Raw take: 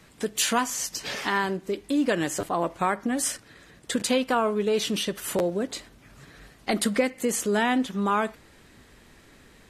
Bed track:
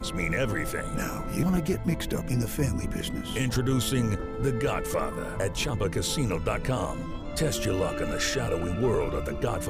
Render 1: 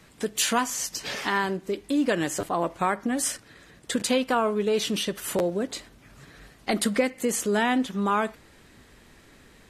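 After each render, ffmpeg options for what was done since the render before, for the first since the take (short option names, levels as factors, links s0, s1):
-af anull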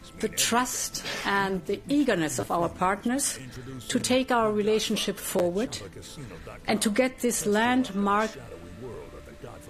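-filter_complex "[1:a]volume=0.188[s0];[0:a][s0]amix=inputs=2:normalize=0"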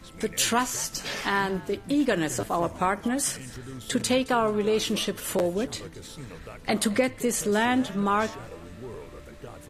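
-filter_complex "[0:a]asplit=3[s0][s1][s2];[s1]adelay=217,afreqshift=-99,volume=0.0944[s3];[s2]adelay=434,afreqshift=-198,volume=0.0292[s4];[s0][s3][s4]amix=inputs=3:normalize=0"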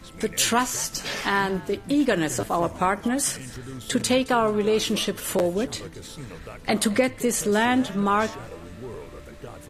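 -af "volume=1.33"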